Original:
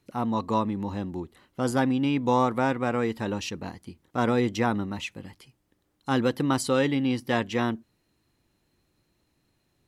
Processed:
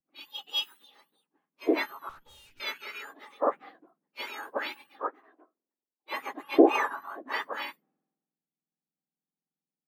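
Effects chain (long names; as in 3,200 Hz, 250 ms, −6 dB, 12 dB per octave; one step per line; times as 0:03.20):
frequency axis turned over on the octave scale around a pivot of 1,800 Hz
high-frequency loss of the air 440 metres
0:02.09–0:02.60: tube saturation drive 50 dB, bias 0.5
0:04.99–0:06.14: high-pass filter 280 Hz 24 dB per octave
multiband upward and downward expander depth 100%
level +3 dB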